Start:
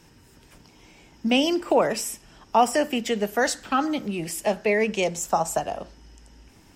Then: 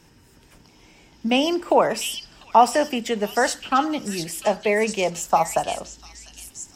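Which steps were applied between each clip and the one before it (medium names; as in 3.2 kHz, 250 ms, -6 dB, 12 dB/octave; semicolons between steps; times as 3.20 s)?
dynamic bell 950 Hz, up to +6 dB, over -34 dBFS, Q 1.3; repeats whose band climbs or falls 698 ms, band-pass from 4.1 kHz, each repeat 0.7 oct, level -1.5 dB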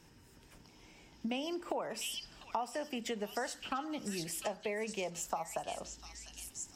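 compression 6:1, threshold -28 dBFS, peak gain reduction 17.5 dB; trim -7 dB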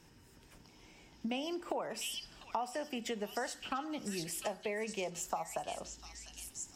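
feedback comb 370 Hz, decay 0.78 s, mix 50%; trim +5.5 dB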